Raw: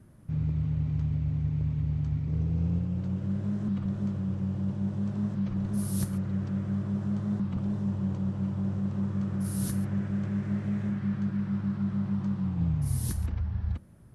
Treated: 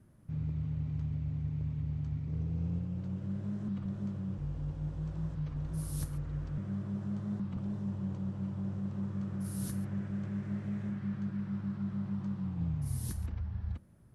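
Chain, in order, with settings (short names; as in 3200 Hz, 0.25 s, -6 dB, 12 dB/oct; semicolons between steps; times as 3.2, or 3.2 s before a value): 4.38–6.58 frequency shift -46 Hz; gain -6.5 dB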